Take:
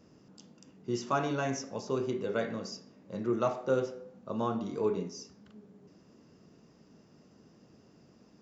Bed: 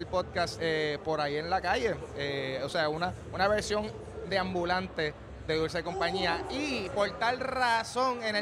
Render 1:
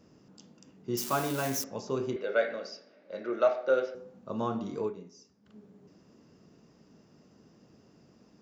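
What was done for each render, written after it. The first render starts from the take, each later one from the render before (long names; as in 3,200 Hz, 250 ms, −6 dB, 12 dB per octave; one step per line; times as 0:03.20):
0:00.97–0:01.64: spike at every zero crossing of −27 dBFS
0:02.16–0:03.95: loudspeaker in its box 400–5,200 Hz, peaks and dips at 590 Hz +10 dB, 1,000 Hz −7 dB, 1,500 Hz +8 dB, 2,200 Hz +6 dB, 4,000 Hz +4 dB
0:04.80–0:05.55: duck −11 dB, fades 0.13 s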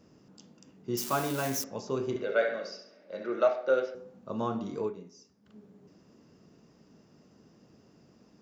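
0:02.01–0:03.45: flutter between parallel walls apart 11.7 metres, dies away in 0.49 s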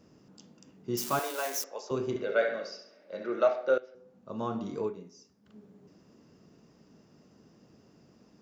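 0:01.19–0:01.91: high-pass filter 420 Hz 24 dB per octave
0:02.64–0:03.13: low-shelf EQ 170 Hz −10 dB
0:03.78–0:04.65: fade in linear, from −19.5 dB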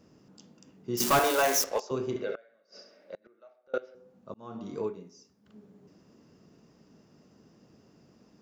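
0:01.00–0:01.80: leveller curve on the samples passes 3
0:02.35–0:03.74: gate with flip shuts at −30 dBFS, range −31 dB
0:04.34–0:04.79: fade in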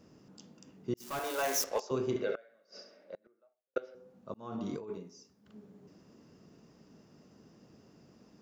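0:00.94–0:02.11: fade in
0:02.79–0:03.76: fade out and dull
0:04.52–0:04.98: compressor whose output falls as the input rises −39 dBFS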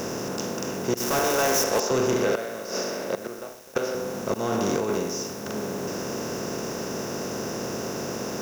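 compressor on every frequency bin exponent 0.4
leveller curve on the samples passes 2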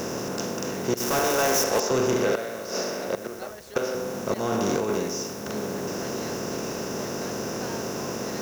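mix in bed −15 dB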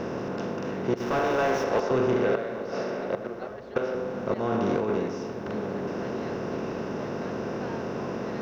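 high-frequency loss of the air 310 metres
bucket-brigade delay 410 ms, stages 4,096, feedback 69%, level −15.5 dB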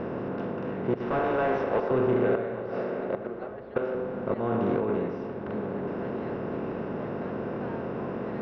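high-frequency loss of the air 390 metres
spring reverb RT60 3.5 s, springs 34 ms, chirp 70 ms, DRR 15.5 dB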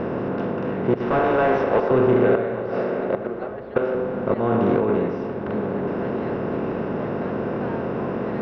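level +7 dB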